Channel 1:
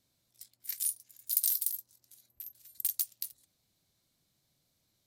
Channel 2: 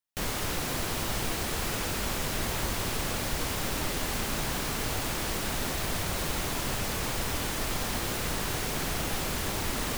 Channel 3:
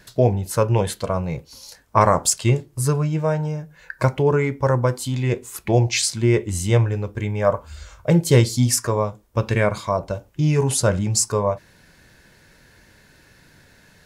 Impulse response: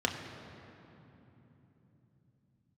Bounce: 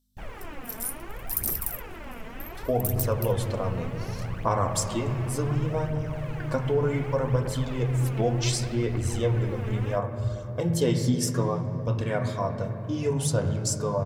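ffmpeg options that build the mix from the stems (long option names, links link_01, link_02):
-filter_complex "[0:a]aderivative,aeval=exprs='val(0)+0.000398*(sin(2*PI*50*n/s)+sin(2*PI*2*50*n/s)/2+sin(2*PI*3*50*n/s)/3+sin(2*PI*4*50*n/s)/4+sin(2*PI*5*50*n/s)/5)':channel_layout=same,volume=-5dB,asplit=2[link_01][link_02];[link_02]volume=-8dB[link_03];[1:a]highshelf=frequency=8300:gain=-8.5,afwtdn=0.0158,volume=-9dB[link_04];[2:a]adelay=2500,volume=-12.5dB,asplit=2[link_05][link_06];[link_06]volume=-6.5dB[link_07];[link_04][link_05]amix=inputs=2:normalize=0,aphaser=in_gain=1:out_gain=1:delay=4.7:decay=0.66:speed=0.67:type=triangular,acompressor=threshold=-27dB:ratio=6,volume=0dB[link_08];[3:a]atrim=start_sample=2205[link_09];[link_03][link_07]amix=inputs=2:normalize=0[link_10];[link_10][link_09]afir=irnorm=-1:irlink=0[link_11];[link_01][link_08][link_11]amix=inputs=3:normalize=0"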